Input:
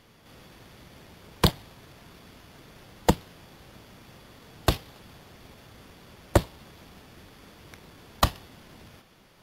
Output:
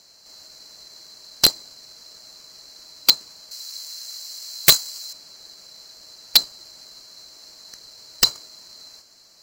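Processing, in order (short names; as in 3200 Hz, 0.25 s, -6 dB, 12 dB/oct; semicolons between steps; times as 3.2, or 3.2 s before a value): band-swap scrambler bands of 4000 Hz; 3.51–5.13 tilt +4 dB/oct; wrapped overs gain 7.5 dB; gain +5 dB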